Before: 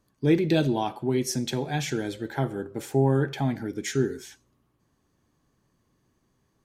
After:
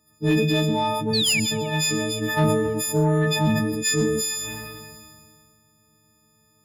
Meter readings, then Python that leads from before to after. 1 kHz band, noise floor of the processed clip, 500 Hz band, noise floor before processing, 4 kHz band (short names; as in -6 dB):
+5.5 dB, -62 dBFS, +3.0 dB, -72 dBFS, +13.0 dB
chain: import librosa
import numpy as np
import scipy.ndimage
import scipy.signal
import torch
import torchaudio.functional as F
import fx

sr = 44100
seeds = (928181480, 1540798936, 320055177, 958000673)

y = fx.freq_snap(x, sr, grid_st=6)
y = scipy.signal.sosfilt(scipy.signal.butter(2, 70.0, 'highpass', fs=sr, output='sos'), y)
y = y + 10.0 ** (-17.5 / 20.0) * np.pad(y, (int(127 * sr / 1000.0), 0))[:len(y)]
y = fx.rider(y, sr, range_db=4, speed_s=0.5)
y = fx.spec_paint(y, sr, seeds[0], shape='fall', start_s=1.13, length_s=0.27, low_hz=2200.0, high_hz=4700.0, level_db=-22.0)
y = 10.0 ** (-13.5 / 20.0) * np.tanh(y / 10.0 ** (-13.5 / 20.0))
y = fx.low_shelf(y, sr, hz=200.0, db=7.0)
y = fx.echo_wet_bandpass(y, sr, ms=89, feedback_pct=81, hz=1400.0, wet_db=-22)
y = fx.sustainer(y, sr, db_per_s=26.0)